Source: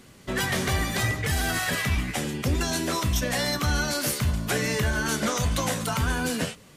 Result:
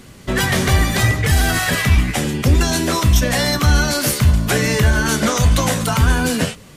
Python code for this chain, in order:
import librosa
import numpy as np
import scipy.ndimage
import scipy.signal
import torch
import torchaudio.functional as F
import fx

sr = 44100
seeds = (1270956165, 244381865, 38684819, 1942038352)

y = fx.low_shelf(x, sr, hz=120.0, db=6.5)
y = F.gain(torch.from_numpy(y), 8.0).numpy()